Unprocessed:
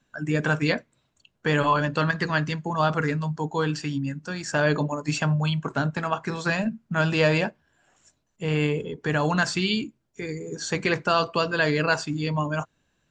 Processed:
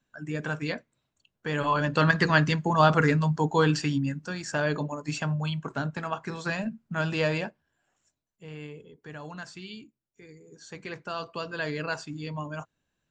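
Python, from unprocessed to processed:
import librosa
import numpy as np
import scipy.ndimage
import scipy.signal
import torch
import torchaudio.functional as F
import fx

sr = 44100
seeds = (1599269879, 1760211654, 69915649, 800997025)

y = fx.gain(x, sr, db=fx.line((1.48, -8.0), (2.11, 3.0), (3.76, 3.0), (4.69, -5.5), (7.23, -5.5), (8.56, -17.5), (10.5, -17.5), (11.63, -9.0)))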